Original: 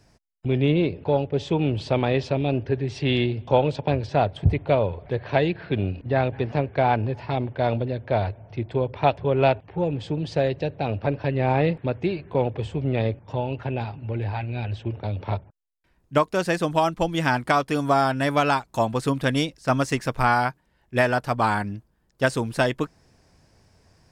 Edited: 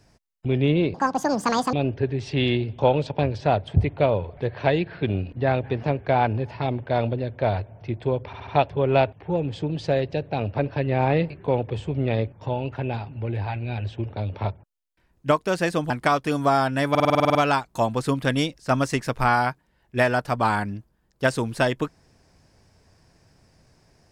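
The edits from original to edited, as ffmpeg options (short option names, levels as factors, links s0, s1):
-filter_complex "[0:a]asplit=17[s0][s1][s2][s3][s4][s5][s6][s7][s8][s9][s10][s11][s12][s13][s14][s15][s16];[s0]atrim=end=0.944[s17];[s1]atrim=start=0.94:end=2.42,asetpts=PTS-STARTPTS,asetrate=82467,aresample=44100[s18];[s2]atrim=start=2.416:end=9.022[s19];[s3]atrim=start=8.948:end=9.022[s20];[s4]atrim=start=8.948:end=9.022[s21];[s5]atrim=start=8.948:end=11.782[s22];[s6]atrim=start=12.168:end=16.772[s23];[s7]atrim=start=17.338:end=18.392[s24];[s8]atrim=start=18.338:end=18.392[s25];[s9]atrim=start=18.338:end=18.392[s26];[s10]atrim=start=18.338:end=18.392[s27];[s11]atrim=start=18.338:end=18.392[s28];[s12]atrim=start=18.338:end=18.392[s29];[s13]atrim=start=18.338:end=18.392[s30];[s14]atrim=start=18.338:end=18.392[s31];[s15]atrim=start=18.338:end=18.392[s32];[s16]atrim=start=18.338[s33];[s17][s18]acrossfade=d=0.004:c1=hsin:c2=hsin[s34];[s34][s19]acrossfade=d=0.004:c1=hsin:c2=hsin[s35];[s35][s20]acrossfade=d=0.004:c1=hsin:c2=hsin[s36];[s36][s21]acrossfade=d=0.004:c1=hsin:c2=hsin[s37];[s37][s22]acrossfade=d=0.004:c1=hsin:c2=hsin[s38];[s38][s23]acrossfade=d=0.004:c1=hsin:c2=hsin[s39];[s39][s24]acrossfade=d=0.004:c1=hsin:c2=hsin[s40];[s40][s25]acrossfade=d=0.004:c1=hsin:c2=hsin[s41];[s41][s26]acrossfade=d=0.004:c1=hsin:c2=hsin[s42];[s42][s27]acrossfade=d=0.004:c1=hsin:c2=hsin[s43];[s43][s28]acrossfade=d=0.004:c1=hsin:c2=hsin[s44];[s44][s29]acrossfade=d=0.004:c1=hsin:c2=hsin[s45];[s45][s30]acrossfade=d=0.004:c1=hsin:c2=hsin[s46];[s46][s31]acrossfade=d=0.004:c1=hsin:c2=hsin[s47];[s47][s32]acrossfade=d=0.004:c1=hsin:c2=hsin[s48];[s48][s33]acrossfade=d=0.004:c1=hsin:c2=hsin"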